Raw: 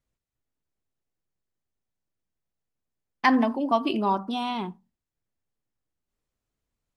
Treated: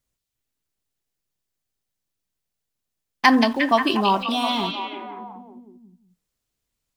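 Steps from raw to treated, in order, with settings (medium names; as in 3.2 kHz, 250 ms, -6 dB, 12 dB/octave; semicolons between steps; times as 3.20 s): treble shelf 3.5 kHz +10.5 dB; in parallel at -5 dB: small samples zeroed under -36 dBFS; on the sum: repeats whose band climbs or falls 178 ms, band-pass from 3.7 kHz, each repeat -0.7 oct, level -1.5 dB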